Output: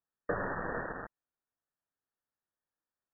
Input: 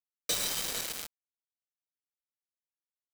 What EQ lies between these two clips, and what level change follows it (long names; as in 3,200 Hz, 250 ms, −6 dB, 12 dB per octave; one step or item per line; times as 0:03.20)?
linear-phase brick-wall low-pass 1,900 Hz
+7.5 dB